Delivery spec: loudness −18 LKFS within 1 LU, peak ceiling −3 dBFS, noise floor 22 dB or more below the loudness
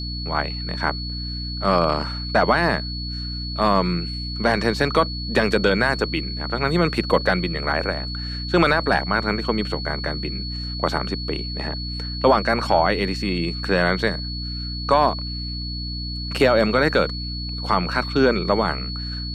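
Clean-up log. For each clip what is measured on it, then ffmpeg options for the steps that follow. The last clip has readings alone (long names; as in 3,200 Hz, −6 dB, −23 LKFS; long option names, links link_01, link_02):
mains hum 60 Hz; hum harmonics up to 300 Hz; level of the hum −28 dBFS; interfering tone 4,400 Hz; level of the tone −31 dBFS; integrated loudness −22.0 LKFS; sample peak −5.5 dBFS; target loudness −18.0 LKFS
→ -af "bandreject=frequency=60:width_type=h:width=4,bandreject=frequency=120:width_type=h:width=4,bandreject=frequency=180:width_type=h:width=4,bandreject=frequency=240:width_type=h:width=4,bandreject=frequency=300:width_type=h:width=4"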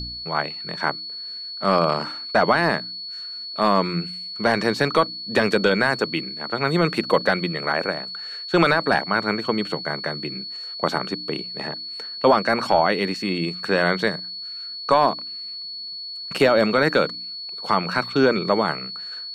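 mains hum none found; interfering tone 4,400 Hz; level of the tone −31 dBFS
→ -af "bandreject=frequency=4400:width=30"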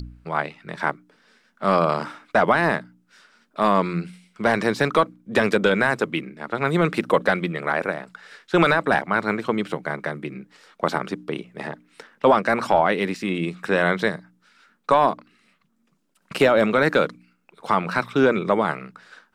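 interfering tone none found; integrated loudness −22.0 LKFS; sample peak −6.0 dBFS; target loudness −18.0 LKFS
→ -af "volume=4dB,alimiter=limit=-3dB:level=0:latency=1"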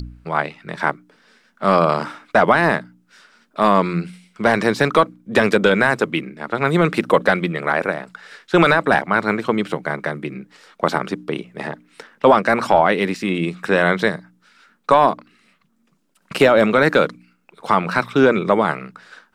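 integrated loudness −18.0 LKFS; sample peak −3.0 dBFS; background noise floor −63 dBFS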